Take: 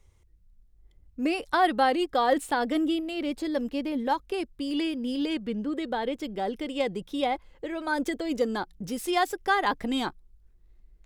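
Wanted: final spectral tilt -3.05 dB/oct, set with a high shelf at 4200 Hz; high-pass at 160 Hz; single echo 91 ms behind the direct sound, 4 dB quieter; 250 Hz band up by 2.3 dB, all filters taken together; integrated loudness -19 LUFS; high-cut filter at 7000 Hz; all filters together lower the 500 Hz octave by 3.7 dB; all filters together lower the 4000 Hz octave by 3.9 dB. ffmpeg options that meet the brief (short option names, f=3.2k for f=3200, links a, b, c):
-af "highpass=160,lowpass=7k,equalizer=f=250:t=o:g=6,equalizer=f=500:t=o:g=-7,equalizer=f=4k:t=o:g=-8.5,highshelf=f=4.2k:g=6.5,aecho=1:1:91:0.631,volume=8dB"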